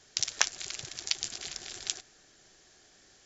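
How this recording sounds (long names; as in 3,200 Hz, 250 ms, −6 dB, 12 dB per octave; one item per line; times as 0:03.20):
background noise floor −61 dBFS
spectral slope +1.5 dB per octave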